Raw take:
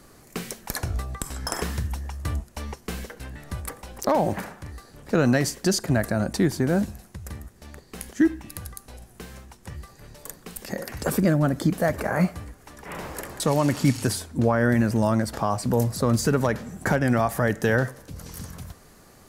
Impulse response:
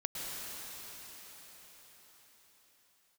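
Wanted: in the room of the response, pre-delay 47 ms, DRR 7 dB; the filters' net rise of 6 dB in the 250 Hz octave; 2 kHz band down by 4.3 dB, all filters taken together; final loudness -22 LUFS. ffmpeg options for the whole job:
-filter_complex "[0:a]equalizer=f=250:t=o:g=7.5,equalizer=f=2000:t=o:g=-6,asplit=2[s0][s1];[1:a]atrim=start_sample=2205,adelay=47[s2];[s1][s2]afir=irnorm=-1:irlink=0,volume=0.282[s3];[s0][s3]amix=inputs=2:normalize=0,volume=0.891"

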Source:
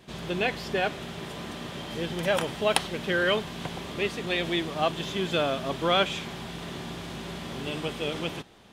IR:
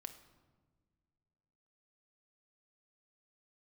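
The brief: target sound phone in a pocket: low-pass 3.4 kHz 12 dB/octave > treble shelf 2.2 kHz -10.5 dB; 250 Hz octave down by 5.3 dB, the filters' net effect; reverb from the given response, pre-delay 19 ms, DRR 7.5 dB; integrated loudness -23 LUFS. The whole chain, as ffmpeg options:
-filter_complex "[0:a]equalizer=f=250:t=o:g=-8.5,asplit=2[s0][s1];[1:a]atrim=start_sample=2205,adelay=19[s2];[s1][s2]afir=irnorm=-1:irlink=0,volume=0.75[s3];[s0][s3]amix=inputs=2:normalize=0,lowpass=3400,highshelf=f=2200:g=-10.5,volume=2.99"

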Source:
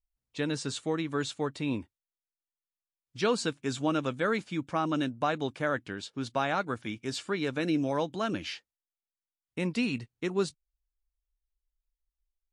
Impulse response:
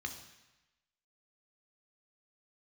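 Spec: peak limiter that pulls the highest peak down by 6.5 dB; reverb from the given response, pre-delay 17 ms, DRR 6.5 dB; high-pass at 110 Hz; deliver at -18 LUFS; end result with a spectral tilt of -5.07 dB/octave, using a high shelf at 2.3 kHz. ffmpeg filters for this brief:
-filter_complex "[0:a]highpass=110,highshelf=f=2300:g=-7,alimiter=limit=0.075:level=0:latency=1,asplit=2[s0][s1];[1:a]atrim=start_sample=2205,adelay=17[s2];[s1][s2]afir=irnorm=-1:irlink=0,volume=0.473[s3];[s0][s3]amix=inputs=2:normalize=0,volume=6.31"

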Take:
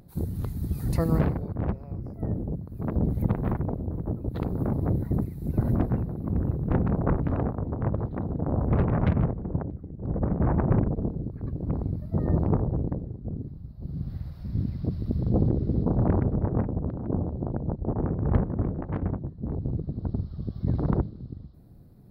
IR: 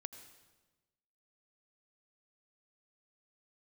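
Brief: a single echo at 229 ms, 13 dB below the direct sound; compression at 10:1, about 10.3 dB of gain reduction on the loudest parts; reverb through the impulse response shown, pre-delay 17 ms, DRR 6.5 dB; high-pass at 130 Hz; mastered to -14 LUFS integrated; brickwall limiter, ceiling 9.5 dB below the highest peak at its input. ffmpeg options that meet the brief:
-filter_complex "[0:a]highpass=130,acompressor=threshold=0.0282:ratio=10,alimiter=level_in=1.88:limit=0.0631:level=0:latency=1,volume=0.531,aecho=1:1:229:0.224,asplit=2[s0][s1];[1:a]atrim=start_sample=2205,adelay=17[s2];[s1][s2]afir=irnorm=-1:irlink=0,volume=0.75[s3];[s0][s3]amix=inputs=2:normalize=0,volume=16.8"

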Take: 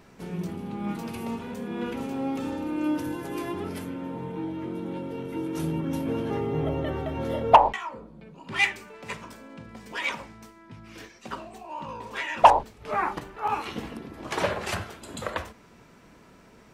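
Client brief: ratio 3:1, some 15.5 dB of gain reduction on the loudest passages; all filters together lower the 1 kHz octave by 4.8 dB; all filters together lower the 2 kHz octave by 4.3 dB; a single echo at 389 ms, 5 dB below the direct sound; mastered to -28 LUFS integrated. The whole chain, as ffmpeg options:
-af "equalizer=f=1000:t=o:g=-5,equalizer=f=2000:t=o:g=-4,acompressor=threshold=0.0178:ratio=3,aecho=1:1:389:0.562,volume=2.99"

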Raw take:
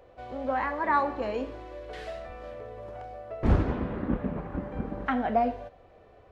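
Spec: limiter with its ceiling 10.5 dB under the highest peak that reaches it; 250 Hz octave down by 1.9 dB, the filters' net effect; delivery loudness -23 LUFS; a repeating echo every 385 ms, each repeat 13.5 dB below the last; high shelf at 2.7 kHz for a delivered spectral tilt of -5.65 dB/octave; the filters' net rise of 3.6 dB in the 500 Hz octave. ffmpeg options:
-af "equalizer=f=250:t=o:g=-3.5,equalizer=f=500:t=o:g=5,highshelf=f=2700:g=4.5,alimiter=limit=0.0794:level=0:latency=1,aecho=1:1:385|770:0.211|0.0444,volume=3.35"

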